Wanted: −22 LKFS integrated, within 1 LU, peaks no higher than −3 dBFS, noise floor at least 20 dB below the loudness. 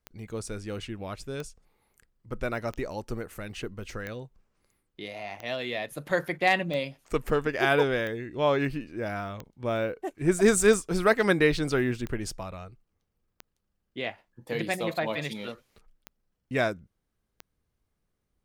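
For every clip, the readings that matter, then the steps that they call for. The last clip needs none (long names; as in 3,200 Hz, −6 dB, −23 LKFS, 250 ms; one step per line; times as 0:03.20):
number of clicks 14; integrated loudness −28.5 LKFS; sample peak −7.0 dBFS; target loudness −22.0 LKFS
→ click removal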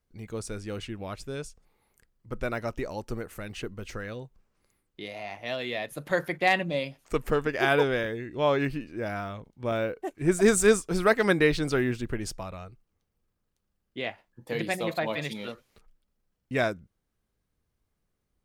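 number of clicks 0; integrated loudness −28.5 LKFS; sample peak −7.0 dBFS; target loudness −22.0 LKFS
→ level +6.5 dB
brickwall limiter −3 dBFS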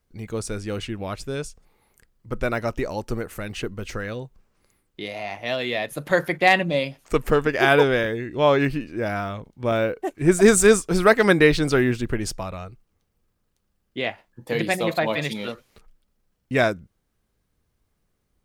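integrated loudness −22.0 LKFS; sample peak −3.0 dBFS; background noise floor −73 dBFS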